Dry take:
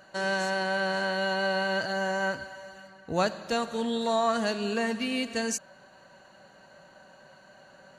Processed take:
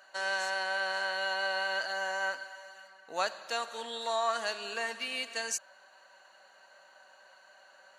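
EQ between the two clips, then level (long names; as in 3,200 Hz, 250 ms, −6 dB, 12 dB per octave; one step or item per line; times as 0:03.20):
high-pass filter 770 Hz 12 dB per octave
−1.5 dB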